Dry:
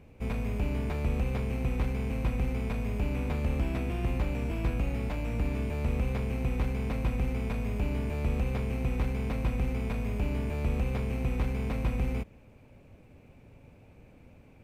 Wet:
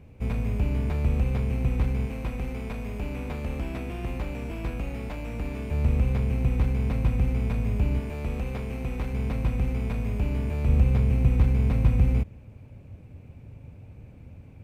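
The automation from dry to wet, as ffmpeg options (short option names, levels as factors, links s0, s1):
-af "asetnsamples=n=441:p=0,asendcmd='2.06 equalizer g -3;5.71 equalizer g 8.5;7.99 equalizer g -1.5;9.13 equalizer g 5.5;10.68 equalizer g 13',equalizer=f=91:t=o:w=2.1:g=7"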